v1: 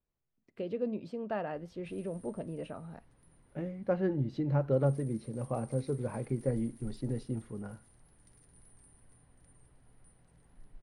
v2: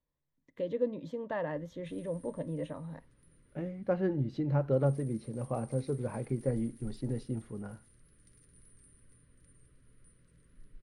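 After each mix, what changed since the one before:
first voice: add rippled EQ curve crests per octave 1.1, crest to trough 12 dB; background: add Butterworth band-stop 800 Hz, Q 1.3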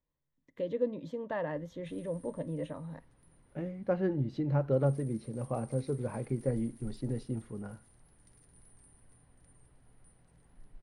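background: remove Butterworth band-stop 800 Hz, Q 1.3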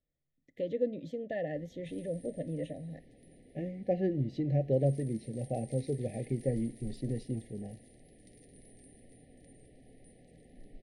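background: add graphic EQ 250/500/2000/4000 Hz +11/+11/+5/+6 dB; master: add brick-wall FIR band-stop 800–1700 Hz

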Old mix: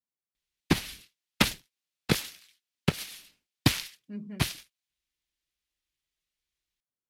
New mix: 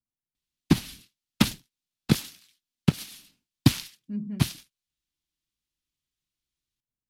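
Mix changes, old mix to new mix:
speech: remove high-pass 130 Hz; master: add graphic EQ 125/250/500/2000 Hz +5/+7/-5/-5 dB

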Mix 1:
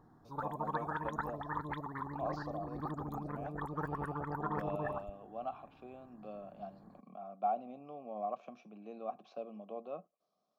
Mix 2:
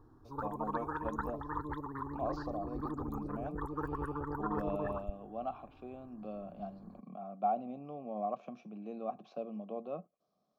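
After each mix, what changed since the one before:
background: add static phaser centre 670 Hz, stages 6; master: add bass shelf 280 Hz +11.5 dB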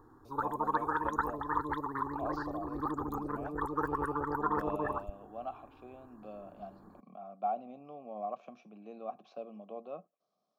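background +8.0 dB; master: add bass shelf 280 Hz -11.5 dB

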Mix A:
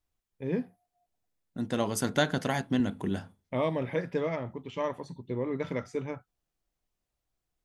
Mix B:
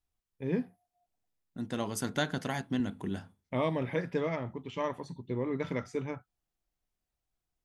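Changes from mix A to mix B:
second voice -4.0 dB; master: add peaking EQ 550 Hz -3 dB 0.67 oct

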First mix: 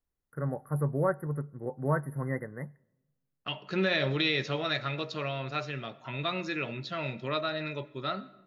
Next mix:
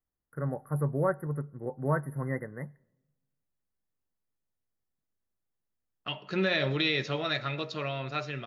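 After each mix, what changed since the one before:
second voice: entry +2.60 s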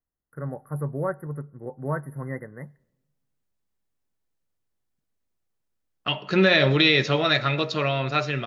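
second voice +9.5 dB

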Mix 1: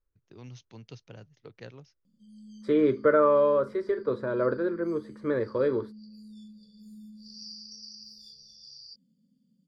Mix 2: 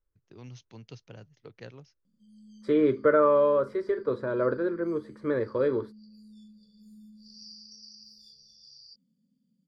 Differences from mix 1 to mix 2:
background -4.0 dB; master: add band-stop 3.7 kHz, Q 29

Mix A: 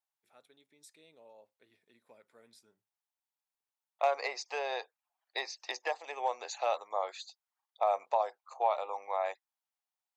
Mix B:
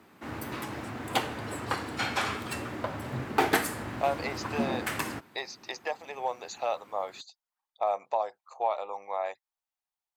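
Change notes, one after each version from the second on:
background: unmuted; master: remove high-pass 450 Hz 12 dB/octave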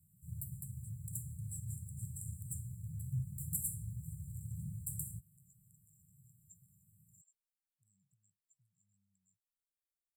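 master: add brick-wall FIR band-stop 180–7200 Hz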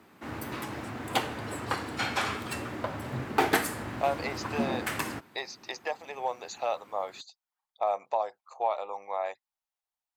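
master: remove brick-wall FIR band-stop 180–7200 Hz

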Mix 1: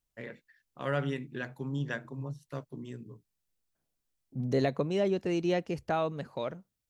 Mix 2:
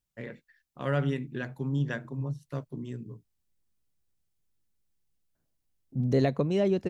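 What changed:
second voice: entry +1.60 s; master: add bass shelf 300 Hz +7 dB

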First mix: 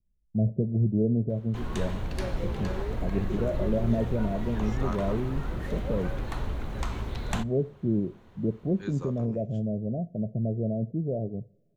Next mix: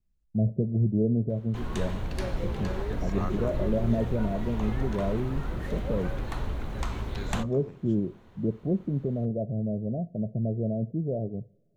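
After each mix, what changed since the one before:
second voice: entry -1.65 s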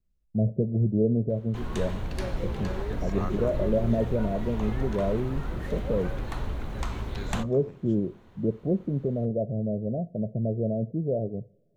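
first voice: add peaking EQ 510 Hz +5 dB 0.76 oct

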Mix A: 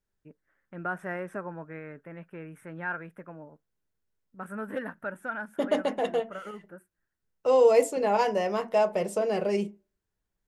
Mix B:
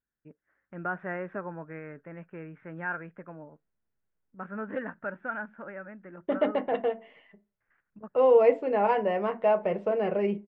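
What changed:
second voice: entry +0.70 s; master: add low-pass 2.6 kHz 24 dB/octave

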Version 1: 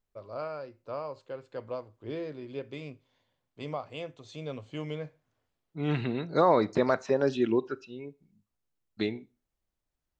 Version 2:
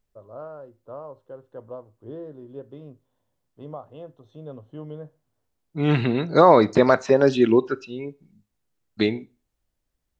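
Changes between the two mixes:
first voice: add boxcar filter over 19 samples; second voice +9.0 dB

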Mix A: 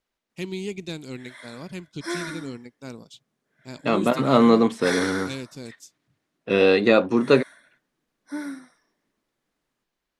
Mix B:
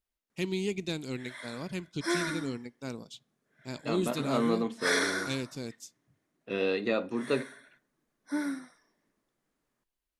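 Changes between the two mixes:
second voice -11.0 dB; reverb: on, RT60 0.45 s

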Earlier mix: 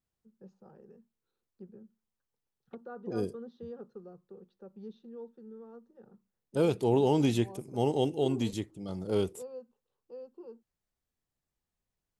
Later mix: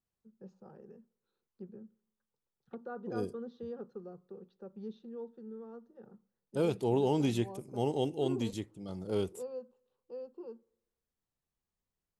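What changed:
second voice -4.5 dB; reverb: on, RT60 0.90 s

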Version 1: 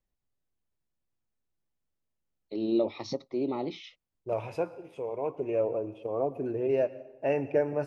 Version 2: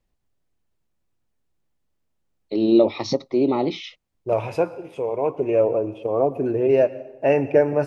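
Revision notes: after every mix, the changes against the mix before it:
first voice +11.0 dB; second voice +9.5 dB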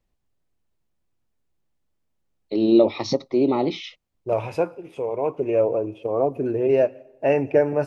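second voice: send -10.0 dB

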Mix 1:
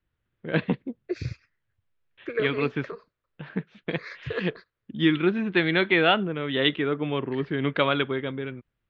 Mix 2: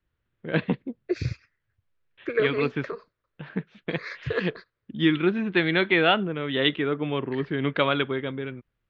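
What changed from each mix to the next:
second voice +3.5 dB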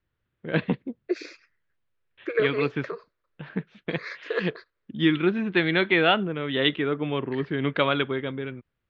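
second voice: add brick-wall FIR high-pass 280 Hz

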